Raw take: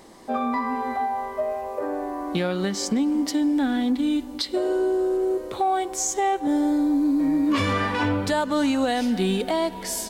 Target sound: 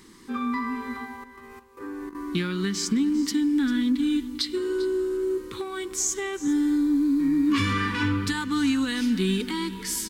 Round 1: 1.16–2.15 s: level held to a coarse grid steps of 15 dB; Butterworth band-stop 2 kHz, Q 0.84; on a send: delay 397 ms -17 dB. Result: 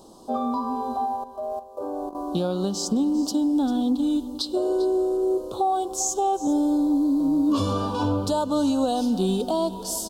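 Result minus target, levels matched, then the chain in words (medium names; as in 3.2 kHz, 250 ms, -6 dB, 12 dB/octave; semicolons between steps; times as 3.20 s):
2 kHz band -17.5 dB
1.16–2.15 s: level held to a coarse grid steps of 15 dB; Butterworth band-stop 650 Hz, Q 0.84; on a send: delay 397 ms -17 dB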